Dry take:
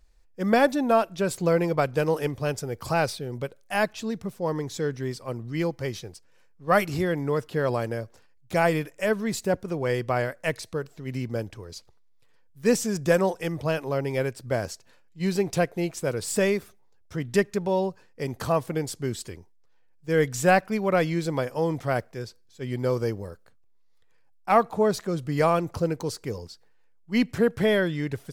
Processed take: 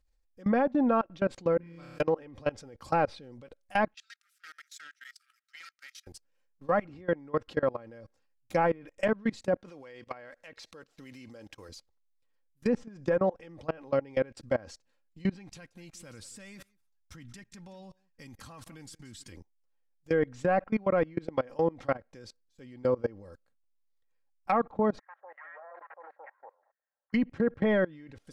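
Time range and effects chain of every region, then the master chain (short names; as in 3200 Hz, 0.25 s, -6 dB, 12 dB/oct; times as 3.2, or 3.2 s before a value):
1.57–2 passive tone stack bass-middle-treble 6-0-2 + flutter echo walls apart 5.1 m, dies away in 1.3 s
3.94–6.07 power-law curve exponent 1.4 + brick-wall FIR high-pass 1200 Hz + Doppler distortion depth 0.13 ms
9.54–11.69 median filter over 5 samples + tilt +2.5 dB/oct
15.34–19.32 bell 480 Hz -13 dB 1.7 oct + compressor 4:1, threshold -32 dBFS + echo 0.178 s -17 dB
24.99–27.13 minimum comb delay 0.51 ms + elliptic band-pass 620–1800 Hz, stop band 60 dB + bands offset in time highs, lows 0.16 s, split 1100 Hz
whole clip: treble ducked by the level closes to 1600 Hz, closed at -20 dBFS; comb 3.7 ms, depth 48%; level quantiser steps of 24 dB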